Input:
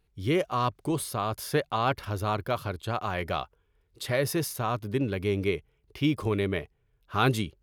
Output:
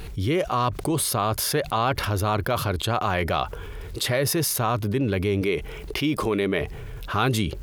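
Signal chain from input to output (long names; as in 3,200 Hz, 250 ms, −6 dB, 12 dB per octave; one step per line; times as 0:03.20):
0:05.41–0:06.61: parametric band 95 Hz −12 dB 1 octave
envelope flattener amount 70%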